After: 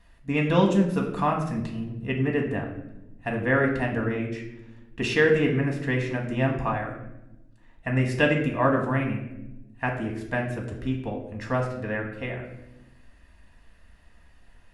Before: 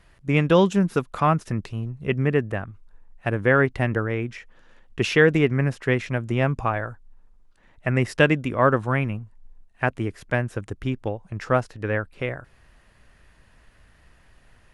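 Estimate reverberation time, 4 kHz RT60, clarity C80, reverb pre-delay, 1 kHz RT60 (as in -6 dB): 0.95 s, 0.60 s, 9.0 dB, 4 ms, 0.75 s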